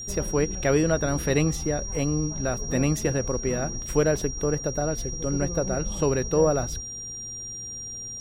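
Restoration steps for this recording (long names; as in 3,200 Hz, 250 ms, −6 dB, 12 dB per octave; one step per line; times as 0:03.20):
hum removal 112.7 Hz, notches 4
notch filter 5,700 Hz, Q 30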